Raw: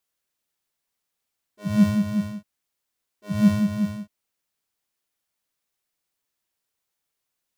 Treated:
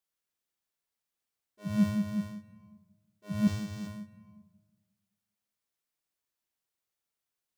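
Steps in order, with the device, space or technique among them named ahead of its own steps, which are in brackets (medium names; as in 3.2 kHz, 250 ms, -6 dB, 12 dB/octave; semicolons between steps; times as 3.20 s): compressed reverb return (on a send at -6 dB: reverberation RT60 1.0 s, pre-delay 113 ms + compression 5:1, threshold -36 dBFS, peak gain reduction 20 dB); 3.47–3.87 s: on the sum: comb 2.5 ms, depth 63%; trim -8 dB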